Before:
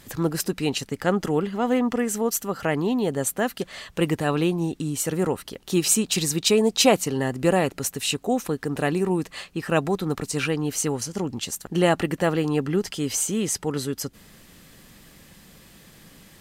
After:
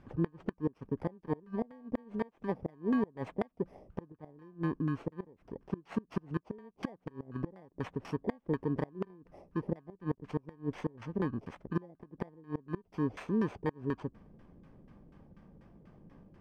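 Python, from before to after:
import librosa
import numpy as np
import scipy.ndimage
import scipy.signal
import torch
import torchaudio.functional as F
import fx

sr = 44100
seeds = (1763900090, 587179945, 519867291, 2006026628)

y = fx.bit_reversed(x, sr, seeds[0], block=32)
y = fx.filter_lfo_lowpass(y, sr, shape='saw_down', hz=4.1, low_hz=400.0, high_hz=1600.0, q=1.0)
y = fx.gate_flip(y, sr, shuts_db=-16.0, range_db=-27)
y = y * 10.0 ** (-4.5 / 20.0)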